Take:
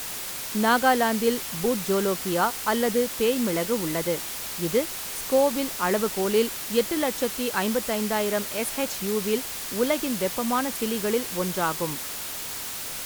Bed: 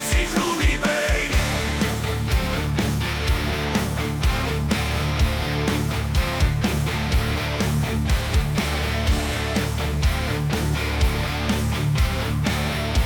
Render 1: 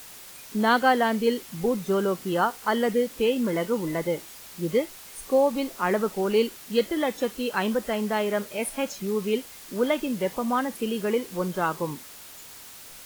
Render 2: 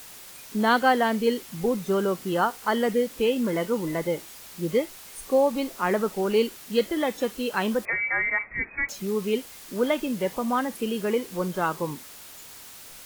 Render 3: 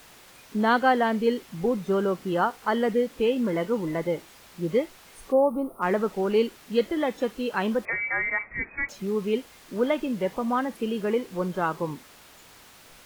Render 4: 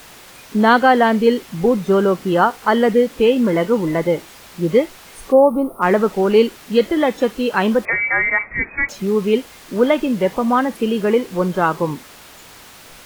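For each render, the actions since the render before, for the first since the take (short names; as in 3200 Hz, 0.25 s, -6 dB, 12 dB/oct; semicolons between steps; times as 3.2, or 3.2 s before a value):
noise print and reduce 11 dB
7.85–8.89 inverted band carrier 2500 Hz
5.32–5.82 spectral gain 1400–8500 Hz -23 dB; high shelf 4700 Hz -12 dB
gain +9.5 dB; limiter -2 dBFS, peak gain reduction 2.5 dB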